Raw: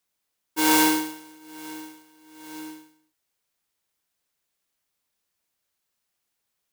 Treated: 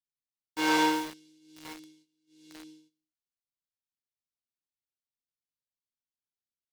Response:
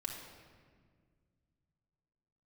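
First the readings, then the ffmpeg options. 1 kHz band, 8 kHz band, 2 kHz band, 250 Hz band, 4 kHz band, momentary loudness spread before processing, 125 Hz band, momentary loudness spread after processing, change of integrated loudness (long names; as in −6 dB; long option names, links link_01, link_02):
−3.5 dB, −13.5 dB, −4.0 dB, −6.5 dB, −6.0 dB, 22 LU, −5.5 dB, 22 LU, −6.0 dB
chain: -filter_complex "[0:a]agate=range=-11dB:threshold=-51dB:ratio=16:detection=peak,lowpass=4600,flanger=delay=7.3:depth=1.2:regen=59:speed=0.54:shape=sinusoidal,acrossover=split=340|3200[link_01][link_02][link_03];[link_02]acrusher=bits=6:mix=0:aa=0.000001[link_04];[link_01][link_04][link_03]amix=inputs=3:normalize=0"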